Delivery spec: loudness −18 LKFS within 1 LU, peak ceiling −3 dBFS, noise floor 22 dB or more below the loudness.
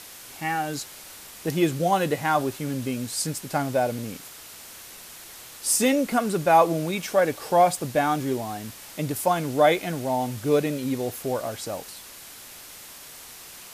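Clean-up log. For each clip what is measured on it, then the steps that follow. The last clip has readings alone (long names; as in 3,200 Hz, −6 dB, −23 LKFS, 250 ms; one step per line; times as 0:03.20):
background noise floor −44 dBFS; target noise floor −47 dBFS; integrated loudness −24.5 LKFS; sample peak −6.5 dBFS; target loudness −18.0 LKFS
→ broadband denoise 6 dB, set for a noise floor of −44 dBFS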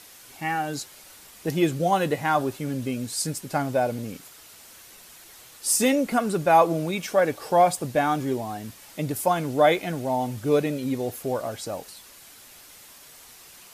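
background noise floor −49 dBFS; integrated loudness −24.5 LKFS; sample peak −6.5 dBFS; target loudness −18.0 LKFS
→ level +6.5 dB
brickwall limiter −3 dBFS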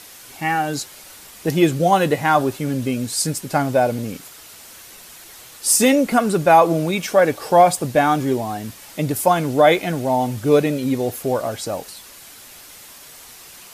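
integrated loudness −18.5 LKFS; sample peak −3.0 dBFS; background noise floor −42 dBFS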